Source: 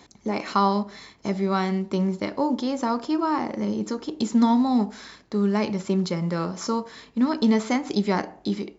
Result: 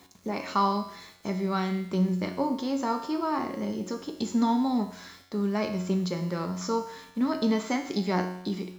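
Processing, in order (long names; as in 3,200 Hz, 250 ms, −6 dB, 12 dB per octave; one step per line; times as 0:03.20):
bit reduction 9 bits
tuned comb filter 91 Hz, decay 0.77 s, harmonics all, mix 80%
level +6.5 dB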